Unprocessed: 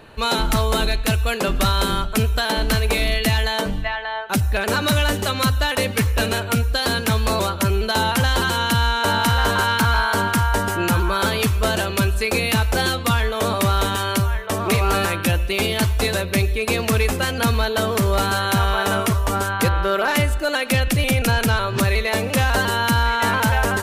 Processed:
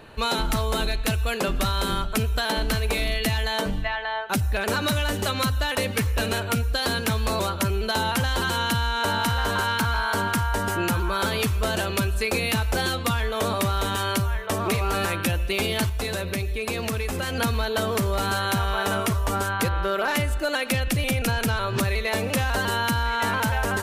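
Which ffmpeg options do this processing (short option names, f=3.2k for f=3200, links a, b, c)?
-filter_complex "[0:a]asettb=1/sr,asplit=3[a][b][c];[a]atrim=end=15.894[d];[b]atrim=start=15.89:end=17.35,asetpts=PTS-STARTPTS,afade=t=in:d=0.004:c=qsin,afade=t=out:st=1.456:d=0.004:c=qsin,acompressor=threshold=-22dB:ratio=6:attack=3.2:release=140:knee=1:detection=peak[e];[c]atrim=start=17.346[f];[d][e]acrossfade=d=0.004:c1=hsin:c2=qsin[g];[g][f]acrossfade=d=0.004:c1=qsin:c2=hsin,acompressor=threshold=-19dB:ratio=6,volume=-1.5dB"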